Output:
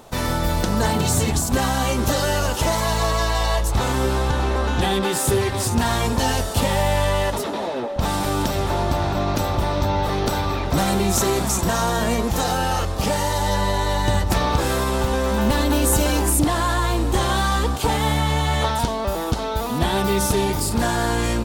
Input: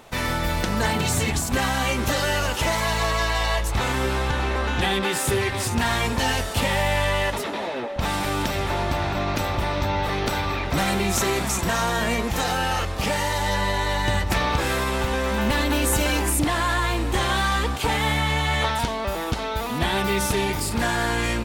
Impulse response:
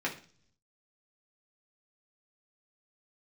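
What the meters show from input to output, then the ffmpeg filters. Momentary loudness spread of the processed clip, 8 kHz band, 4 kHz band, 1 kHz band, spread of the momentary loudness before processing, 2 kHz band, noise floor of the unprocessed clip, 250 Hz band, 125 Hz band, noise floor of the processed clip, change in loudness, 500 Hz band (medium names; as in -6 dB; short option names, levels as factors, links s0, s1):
4 LU, +3.5 dB, 0.0 dB, +2.0 dB, 3 LU, -3.0 dB, -28 dBFS, +4.0 dB, +4.0 dB, -26 dBFS, +2.0 dB, +3.5 dB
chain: -af "equalizer=f=2200:t=o:w=1.2:g=-9,volume=1.58"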